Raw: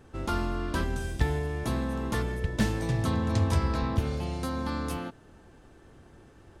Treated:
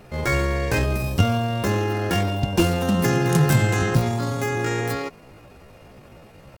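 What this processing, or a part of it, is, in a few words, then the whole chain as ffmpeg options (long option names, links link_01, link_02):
chipmunk voice: -filter_complex "[0:a]asettb=1/sr,asplit=3[link_01][link_02][link_03];[link_01]atrim=end=3.044[link_04];[link_02]atrim=start=3.04:end=4.01,asetpts=PTS-STARTPTS,afade=type=in:duration=0.004:curve=qsin,afade=type=out:start_time=0.966:duration=0.004:curve=qsin,highshelf=frequency=4400:gain=6.5[link_05];[link_03]atrim=start=4.006[link_06];[link_04][link_05]acrossfade=duration=0.004:curve1=hsin:curve2=qsin[link_07];[link_07][link_06]acrossfade=duration=0.004:curve1=qsin:curve2=hsin,asetrate=70004,aresample=44100,atempo=0.629961,volume=7.5dB"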